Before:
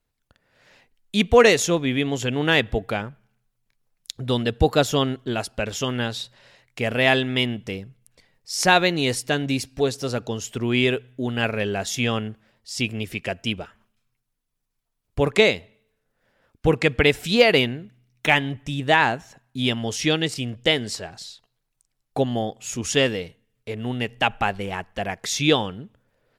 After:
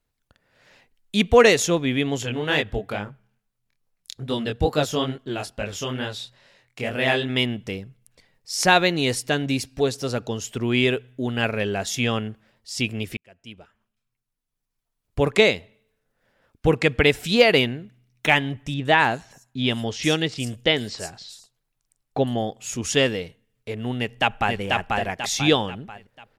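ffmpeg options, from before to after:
ffmpeg -i in.wav -filter_complex "[0:a]asplit=3[link_01][link_02][link_03];[link_01]afade=type=out:start_time=2.22:duration=0.02[link_04];[link_02]flanger=delay=19.5:depth=6:speed=2.3,afade=type=in:start_time=2.22:duration=0.02,afade=type=out:start_time=7.28:duration=0.02[link_05];[link_03]afade=type=in:start_time=7.28:duration=0.02[link_06];[link_04][link_05][link_06]amix=inputs=3:normalize=0,asettb=1/sr,asplit=3[link_07][link_08][link_09];[link_07]atrim=end=18.744[link_10];[link_08]atrim=start=18.74:end=22.39,asetpts=PTS-STARTPTS,afade=type=in:duration=0.004:curve=qsin,afade=type=out:start_time=3.646:duration=0.004:curve=qsin,acrossover=split=5800[link_11][link_12];[link_12]adelay=110[link_13];[link_11][link_13]amix=inputs=2:normalize=0,atrim=end_sample=160965[link_14];[link_09]atrim=start=22.386[link_15];[link_10][link_14]acrossfade=duration=0.004:curve1=hsin:curve2=qsin[link_16];[link_16][link_15]acrossfade=duration=0.004:curve1=qsin:curve2=hsin,asplit=2[link_17][link_18];[link_18]afade=type=in:start_time=23.99:duration=0.01,afade=type=out:start_time=24.59:duration=0.01,aecho=0:1:490|980|1470|1960|2450:0.794328|0.317731|0.127093|0.050837|0.0203348[link_19];[link_17][link_19]amix=inputs=2:normalize=0,asplit=2[link_20][link_21];[link_20]atrim=end=13.17,asetpts=PTS-STARTPTS,afade=type=out:start_time=13.166:duration=0.004:curve=hsin[link_22];[link_21]atrim=start=13.17,asetpts=PTS-STARTPTS,afade=type=in:duration=2.02[link_23];[link_22][link_23]concat=n=2:v=0:a=1" out.wav

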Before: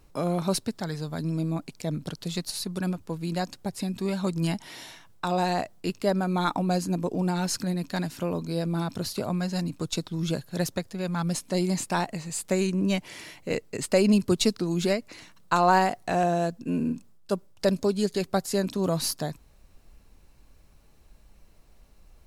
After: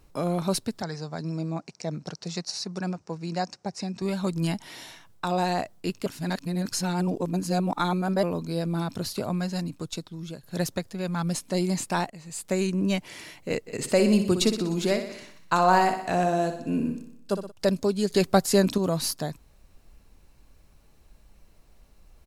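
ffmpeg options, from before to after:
ffmpeg -i in.wav -filter_complex "[0:a]asettb=1/sr,asplit=3[link_01][link_02][link_03];[link_01]atrim=end=0.824[link_04];[link_02]atrim=start=0.82:end=4.02,asetpts=PTS-STARTPTS,afade=type=in:duration=0.004:curve=qsin,afade=type=out:start_time=3.196:duration=0.004:curve=qsin,highpass=150,equalizer=frequency=270:width_type=q:width=4:gain=-7,equalizer=frequency=760:width_type=q:width=4:gain=4,equalizer=frequency=3300:width_type=q:width=4:gain=-9,equalizer=frequency=5600:width_type=q:width=4:gain=8,lowpass=frequency=7300:width=0.5412,lowpass=frequency=7300:width=1.3066[link_05];[link_03]atrim=start=4.016[link_06];[link_04][link_05]acrossfade=duration=0.004:curve1=hsin:curve2=qsin[link_07];[link_07][link_06]acrossfade=duration=0.004:curve1=qsin:curve2=hsin,asplit=3[link_08][link_09][link_10];[link_08]afade=type=out:start_time=13.66:duration=0.02[link_11];[link_09]aecho=1:1:61|122|183|244|305|366|427:0.355|0.199|0.111|0.0623|0.0349|0.0195|0.0109,afade=type=in:start_time=13.66:duration=0.02,afade=type=out:start_time=17.5:duration=0.02[link_12];[link_10]afade=type=in:start_time=17.5:duration=0.02[link_13];[link_11][link_12][link_13]amix=inputs=3:normalize=0,asettb=1/sr,asplit=3[link_14][link_15][link_16];[link_14]atrim=end=18.104[link_17];[link_15]atrim=start=18.1:end=18.78,asetpts=PTS-STARTPTS,afade=type=in:duration=0.004:curve=qsin,afade=type=out:start_time=0.676:duration=0.004:curve=qsin,acontrast=53[link_18];[link_16]atrim=start=18.776[link_19];[link_17][link_18]acrossfade=duration=0.004:curve1=hsin:curve2=qsin[link_20];[link_20][link_19]acrossfade=duration=0.004:curve1=qsin:curve2=hsin,asplit=5[link_21][link_22][link_23][link_24][link_25];[link_21]atrim=end=6.062[link_26];[link_22]atrim=start=6.058:end=8.232,asetpts=PTS-STARTPTS,areverse[link_27];[link_23]atrim=start=8.228:end=10.43,asetpts=PTS-STARTPTS,afade=type=out:start_time=1.182:duration=1.02:silence=0.223872[link_28];[link_24]atrim=start=10.43:end=12.1,asetpts=PTS-STARTPTS,afade=type=in:duration=0.004:curve=hsin:silence=0.223872,afade=type=out:start_time=1.666:duration=0.004:curve=hsin:silence=0.177828[link_29];[link_25]atrim=start=12.1,asetpts=PTS-STARTPTS,afade=type=in:duration=0.67:curve=qsin:silence=0.177828[link_30];[link_26][link_27]acrossfade=duration=0.004:curve1=hsin:curve2=hsin[link_31];[link_28][link_29][link_30]concat=n=3:v=0:a=1[link_32];[link_31][link_32]acrossfade=duration=0.004:curve1=hsin:curve2=hsin" out.wav

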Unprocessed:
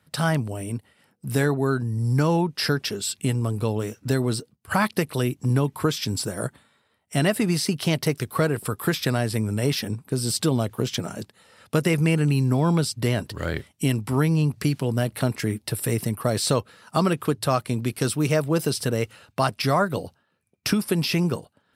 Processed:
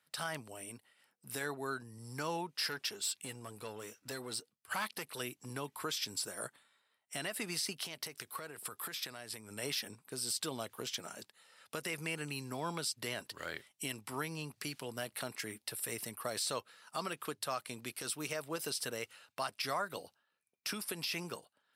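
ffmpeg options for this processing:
ffmpeg -i in.wav -filter_complex "[0:a]asettb=1/sr,asplit=3[link_01][link_02][link_03];[link_01]atrim=end=2.574[link_04];[link_02]atrim=start=2.57:end=5.2,asetpts=PTS-STARTPTS,afade=type=in:duration=0.004:curve=qsin,afade=type=out:start_time=2.626:duration=0.004:curve=qsin,aeval=exprs='(tanh(7.08*val(0)+0.25)-tanh(0.25))/7.08':channel_layout=same[link_05];[link_03]atrim=start=5.196[link_06];[link_04][link_05]acrossfade=duration=0.004:curve1=hsin:curve2=qsin[link_07];[link_07][link_06]acrossfade=duration=0.004:curve1=qsin:curve2=hsin,asettb=1/sr,asplit=3[link_08][link_09][link_10];[link_08]atrim=end=7.724[link_11];[link_09]atrim=start=7.72:end=9.51,asetpts=PTS-STARTPTS,afade=type=in:duration=0.004:curve=qsin,afade=type=out:start_time=1.786:duration=0.004:curve=qsin,acompressor=threshold=-26dB:ratio=10:attack=3.2:release=140:knee=1:detection=peak[link_12];[link_10]atrim=start=9.506[link_13];[link_11][link_12]acrossfade=duration=0.004:curve1=hsin:curve2=qsin[link_14];[link_14][link_13]acrossfade=duration=0.004:curve1=qsin:curve2=hsin,highpass=frequency=1300:poles=1,alimiter=limit=-19dB:level=0:latency=1:release=85,volume=-6.5dB" out.wav

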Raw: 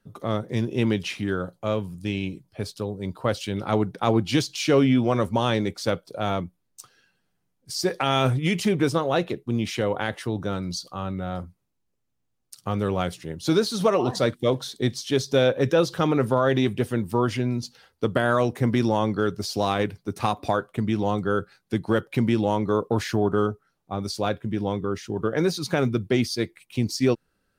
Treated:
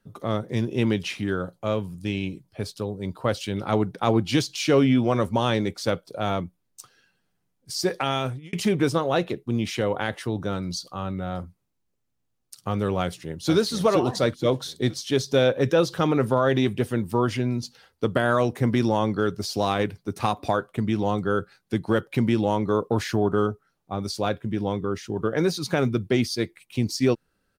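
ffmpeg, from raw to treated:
ffmpeg -i in.wav -filter_complex "[0:a]asplit=2[link_01][link_02];[link_02]afade=type=in:start_time=13.02:duration=0.01,afade=type=out:start_time=13.52:duration=0.01,aecho=0:1:470|940|1410|1880|2350:0.530884|0.212354|0.0849415|0.0339766|0.0135906[link_03];[link_01][link_03]amix=inputs=2:normalize=0,asplit=2[link_04][link_05];[link_04]atrim=end=8.53,asetpts=PTS-STARTPTS,afade=type=out:start_time=7.94:duration=0.59[link_06];[link_05]atrim=start=8.53,asetpts=PTS-STARTPTS,afade=type=in:duration=0.004:curve=hsin[link_07];[link_06][link_07]concat=n=2:v=0:a=1" out.wav

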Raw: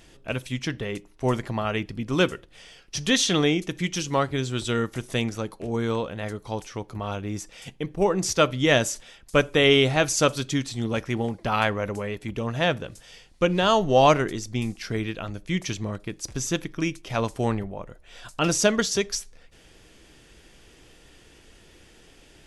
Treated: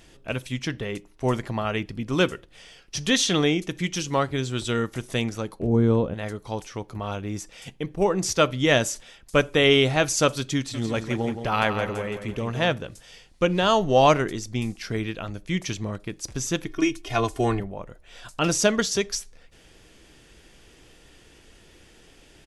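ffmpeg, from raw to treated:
ffmpeg -i in.wav -filter_complex "[0:a]asettb=1/sr,asplit=3[link_01][link_02][link_03];[link_01]atrim=end=5.594[link_04];[link_02]atrim=start=5.59:end=6.14,asetpts=PTS-STARTPTS,afade=type=in:duration=0.004:curve=qsin,afade=type=out:start_time=0.546:duration=0.004:curve=qsin,tiltshelf=frequency=800:gain=9.5[link_05];[link_03]atrim=start=6.136[link_06];[link_04][link_05]acrossfade=duration=0.004:curve1=hsin:curve2=qsin[link_07];[link_07][link_06]acrossfade=duration=0.004:curve1=qsin:curve2=hsin,asplit=3[link_08][link_09][link_10];[link_08]afade=type=out:start_time=10.73:duration=0.02[link_11];[link_09]aecho=1:1:170|340|510|680:0.376|0.147|0.0572|0.0223,afade=type=in:start_time=10.73:duration=0.02,afade=type=out:start_time=12.72:duration=0.02[link_12];[link_10]afade=type=in:start_time=12.72:duration=0.02[link_13];[link_11][link_12][link_13]amix=inputs=3:normalize=0,asettb=1/sr,asplit=3[link_14][link_15][link_16];[link_14]atrim=end=16.664[link_17];[link_15]atrim=start=16.66:end=17.6,asetpts=PTS-STARTPTS,afade=type=in:duration=0.004:curve=qsin,afade=type=out:start_time=0.936:duration=0.004:curve=qsin,aecho=1:1:2.8:0.97,atrim=end_sample=41454[link_18];[link_16]atrim=start=17.596[link_19];[link_17][link_18]acrossfade=duration=0.004:curve1=hsin:curve2=qsin[link_20];[link_20][link_19]acrossfade=duration=0.004:curve1=qsin:curve2=hsin" out.wav

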